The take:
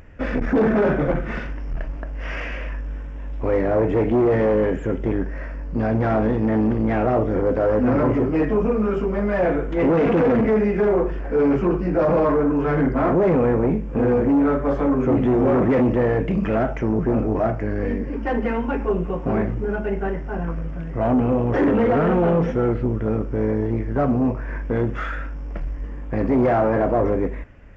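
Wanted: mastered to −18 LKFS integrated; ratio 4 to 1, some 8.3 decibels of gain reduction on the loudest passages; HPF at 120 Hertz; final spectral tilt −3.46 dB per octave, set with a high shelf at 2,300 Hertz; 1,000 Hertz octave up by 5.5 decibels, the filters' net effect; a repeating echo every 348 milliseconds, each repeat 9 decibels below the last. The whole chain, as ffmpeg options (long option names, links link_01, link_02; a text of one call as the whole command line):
ffmpeg -i in.wav -af "highpass=120,equalizer=frequency=1000:width_type=o:gain=6,highshelf=frequency=2300:gain=8,acompressor=threshold=-23dB:ratio=4,aecho=1:1:348|696|1044|1392:0.355|0.124|0.0435|0.0152,volume=8dB" out.wav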